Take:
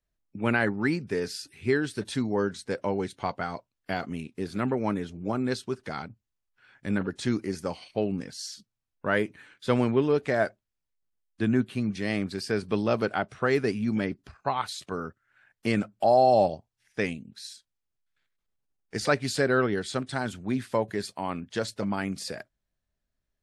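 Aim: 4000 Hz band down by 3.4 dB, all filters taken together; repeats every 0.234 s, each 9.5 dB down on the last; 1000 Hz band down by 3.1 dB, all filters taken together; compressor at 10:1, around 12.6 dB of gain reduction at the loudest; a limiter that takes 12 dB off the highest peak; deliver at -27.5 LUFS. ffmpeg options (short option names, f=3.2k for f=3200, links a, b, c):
-af "equalizer=f=1k:t=o:g=-4.5,equalizer=f=4k:t=o:g=-4,acompressor=threshold=-31dB:ratio=10,alimiter=level_in=5.5dB:limit=-24dB:level=0:latency=1,volume=-5.5dB,aecho=1:1:234|468|702|936:0.335|0.111|0.0365|0.012,volume=13dB"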